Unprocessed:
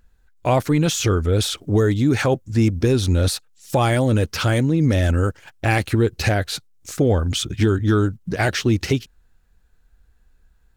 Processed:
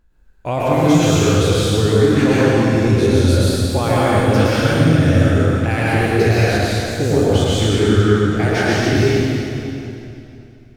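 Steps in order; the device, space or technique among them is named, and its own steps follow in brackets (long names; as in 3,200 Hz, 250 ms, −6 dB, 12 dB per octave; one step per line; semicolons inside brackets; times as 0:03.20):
peak hold with a decay on every bin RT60 0.45 s
swimming-pool hall (convolution reverb RT60 2.9 s, pre-delay 102 ms, DRR −8 dB; high-shelf EQ 4,100 Hz −5 dB)
level −4.5 dB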